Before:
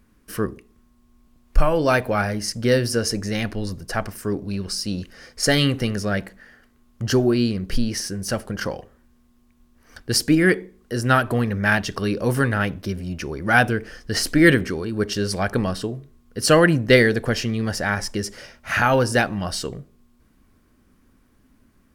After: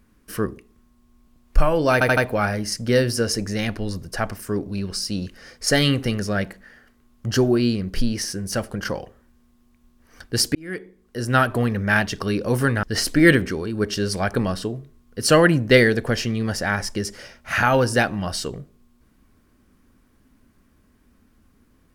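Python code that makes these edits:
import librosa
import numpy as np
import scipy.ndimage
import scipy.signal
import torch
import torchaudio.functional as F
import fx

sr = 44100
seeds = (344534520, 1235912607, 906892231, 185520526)

y = fx.edit(x, sr, fx.stutter(start_s=1.93, slice_s=0.08, count=4),
    fx.fade_in_span(start_s=10.31, length_s=0.87),
    fx.cut(start_s=12.59, length_s=1.43), tone=tone)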